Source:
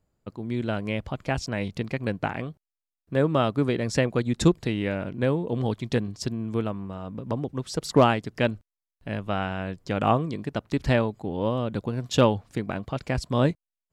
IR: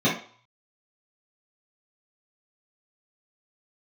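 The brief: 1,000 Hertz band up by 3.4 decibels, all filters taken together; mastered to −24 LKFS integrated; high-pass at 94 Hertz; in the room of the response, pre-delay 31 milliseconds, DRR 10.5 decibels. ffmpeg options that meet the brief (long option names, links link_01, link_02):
-filter_complex "[0:a]highpass=94,equalizer=frequency=1000:width_type=o:gain=4.5,asplit=2[link_01][link_02];[1:a]atrim=start_sample=2205,adelay=31[link_03];[link_02][link_03]afir=irnorm=-1:irlink=0,volume=-26.5dB[link_04];[link_01][link_04]amix=inputs=2:normalize=0,volume=1dB"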